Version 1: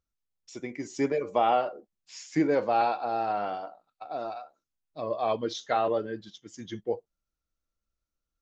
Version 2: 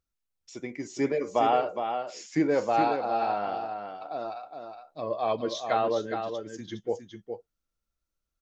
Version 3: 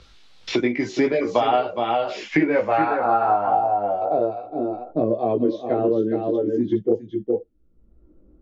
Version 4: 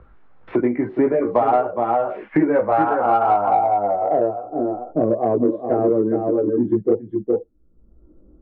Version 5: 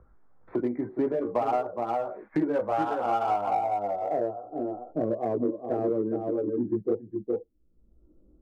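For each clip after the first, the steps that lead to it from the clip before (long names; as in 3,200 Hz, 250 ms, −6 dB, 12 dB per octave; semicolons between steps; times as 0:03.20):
single-tap delay 413 ms −7 dB
multi-voice chorus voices 4, 0.56 Hz, delay 18 ms, depth 2 ms; low-pass filter sweep 3,900 Hz → 360 Hz, 0:02.03–0:04.53; multiband upward and downward compressor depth 100%; level +8.5 dB
low-pass filter 1,500 Hz 24 dB per octave; in parallel at −7 dB: soft clipping −15.5 dBFS, distortion −15 dB
adaptive Wiener filter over 15 samples; level −9 dB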